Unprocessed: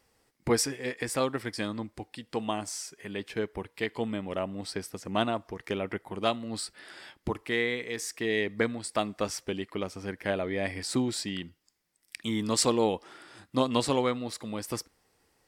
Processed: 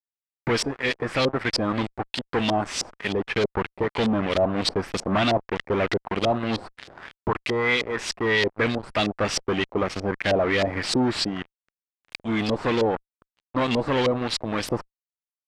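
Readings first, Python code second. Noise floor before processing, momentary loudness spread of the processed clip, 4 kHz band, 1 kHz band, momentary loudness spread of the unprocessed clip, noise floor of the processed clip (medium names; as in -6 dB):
-72 dBFS, 8 LU, +7.5 dB, +7.0 dB, 11 LU, under -85 dBFS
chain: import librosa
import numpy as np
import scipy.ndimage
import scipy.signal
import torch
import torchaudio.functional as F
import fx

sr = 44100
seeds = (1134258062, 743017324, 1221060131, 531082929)

y = scipy.signal.lfilter([1.0, -0.8], [1.0], x)
y = fx.rider(y, sr, range_db=4, speed_s=2.0)
y = fx.fuzz(y, sr, gain_db=48.0, gate_db=-51.0)
y = fx.filter_lfo_lowpass(y, sr, shape='saw_up', hz=3.2, low_hz=510.0, high_hz=4700.0, q=1.6)
y = F.gain(torch.from_numpy(y), -6.0).numpy()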